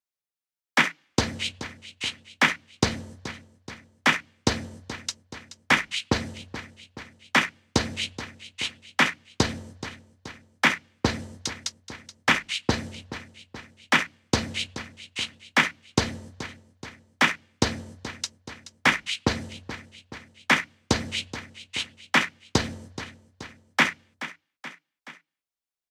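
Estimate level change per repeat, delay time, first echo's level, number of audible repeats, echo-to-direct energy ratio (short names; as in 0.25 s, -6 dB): -4.5 dB, 0.427 s, -14.5 dB, 3, -13.0 dB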